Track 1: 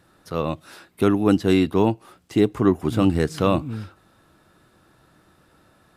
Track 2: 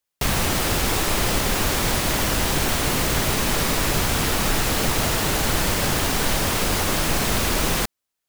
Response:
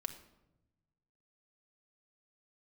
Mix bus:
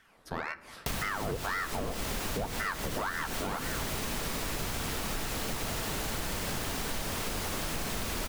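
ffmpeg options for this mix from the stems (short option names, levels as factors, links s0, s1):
-filter_complex "[0:a]aeval=exprs='val(0)*sin(2*PI*910*n/s+910*0.85/1.9*sin(2*PI*1.9*n/s))':c=same,volume=0.531,asplit=3[s0][s1][s2];[s1]volume=0.631[s3];[1:a]adelay=650,volume=0.473,asplit=2[s4][s5];[s5]volume=0.355[s6];[s2]apad=whole_len=394014[s7];[s4][s7]sidechaincompress=threshold=0.0224:ratio=8:attack=43:release=200[s8];[2:a]atrim=start_sample=2205[s9];[s3][s6]amix=inputs=2:normalize=0[s10];[s10][s9]afir=irnorm=-1:irlink=0[s11];[s0][s8][s11]amix=inputs=3:normalize=0,asoftclip=type=hard:threshold=0.15,acompressor=threshold=0.0251:ratio=4"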